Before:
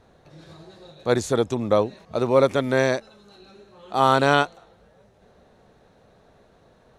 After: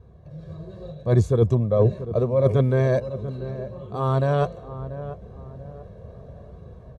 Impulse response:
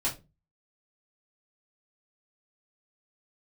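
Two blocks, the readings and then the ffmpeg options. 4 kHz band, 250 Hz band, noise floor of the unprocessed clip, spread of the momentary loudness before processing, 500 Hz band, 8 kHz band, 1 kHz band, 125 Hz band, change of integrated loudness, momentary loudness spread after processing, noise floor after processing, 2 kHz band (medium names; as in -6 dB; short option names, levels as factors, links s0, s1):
-14.0 dB, -0.5 dB, -57 dBFS, 10 LU, -0.5 dB, under -10 dB, -8.5 dB, +10.5 dB, -1.0 dB, 21 LU, -45 dBFS, -11.5 dB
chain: -filter_complex "[0:a]flanger=delay=0.8:depth=1.1:regen=-62:speed=0.75:shape=sinusoidal,highpass=56,aecho=1:1:1.8:0.64,areverse,acompressor=threshold=0.0316:ratio=5,areverse,tiltshelf=f=910:g=9,dynaudnorm=f=530:g=3:m=2.51,lowshelf=f=160:g=10,asplit=2[s0][s1];[s1]adelay=688,lowpass=f=1100:p=1,volume=0.251,asplit=2[s2][s3];[s3]adelay=688,lowpass=f=1100:p=1,volume=0.41,asplit=2[s4][s5];[s5]adelay=688,lowpass=f=1100:p=1,volume=0.41,asplit=2[s6][s7];[s7]adelay=688,lowpass=f=1100:p=1,volume=0.41[s8];[s2][s4][s6][s8]amix=inputs=4:normalize=0[s9];[s0][s9]amix=inputs=2:normalize=0,volume=0.794"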